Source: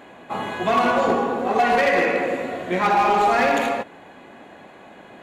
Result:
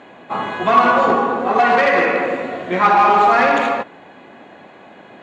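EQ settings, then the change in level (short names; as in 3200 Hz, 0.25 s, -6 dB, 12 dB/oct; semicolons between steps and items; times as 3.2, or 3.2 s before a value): dynamic EQ 1200 Hz, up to +7 dB, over -36 dBFS, Q 1.8; HPF 89 Hz; LPF 5500 Hz 12 dB/oct; +2.5 dB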